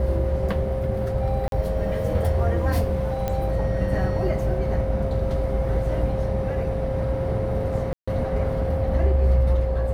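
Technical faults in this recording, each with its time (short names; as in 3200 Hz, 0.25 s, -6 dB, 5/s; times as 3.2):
tone 530 Hz -27 dBFS
1.48–1.52 gap 42 ms
3.28 pop -13 dBFS
7.93–8.07 gap 0.145 s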